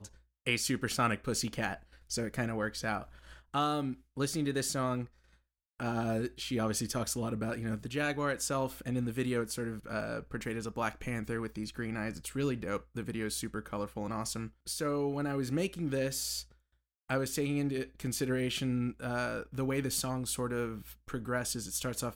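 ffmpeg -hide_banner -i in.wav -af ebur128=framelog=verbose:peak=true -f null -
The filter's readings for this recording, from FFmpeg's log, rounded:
Integrated loudness:
  I:         -34.6 LUFS
  Threshold: -44.8 LUFS
Loudness range:
  LRA:         2.9 LU
  Threshold: -55.0 LUFS
  LRA low:   -36.8 LUFS
  LRA high:  -33.9 LUFS
True peak:
  Peak:      -16.2 dBFS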